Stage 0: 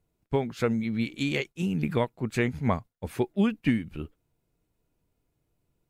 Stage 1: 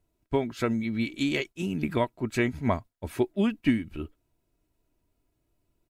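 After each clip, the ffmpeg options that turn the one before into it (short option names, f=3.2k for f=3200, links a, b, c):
-af "aecho=1:1:3.1:0.44"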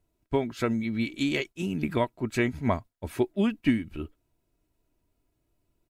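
-af anull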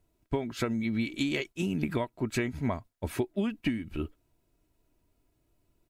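-af "acompressor=threshold=-28dB:ratio=12,volume=2.5dB"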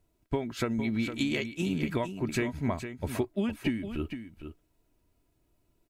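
-af "aecho=1:1:458:0.335"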